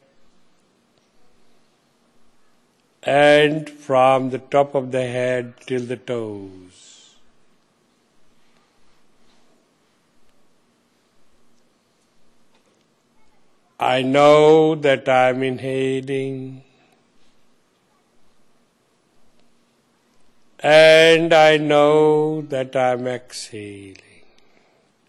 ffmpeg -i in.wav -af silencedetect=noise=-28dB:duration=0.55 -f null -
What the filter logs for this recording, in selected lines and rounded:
silence_start: 0.00
silence_end: 3.03 | silence_duration: 3.03
silence_start: 6.47
silence_end: 13.80 | silence_duration: 7.33
silence_start: 16.53
silence_end: 20.63 | silence_duration: 4.10
silence_start: 23.96
silence_end: 25.08 | silence_duration: 1.12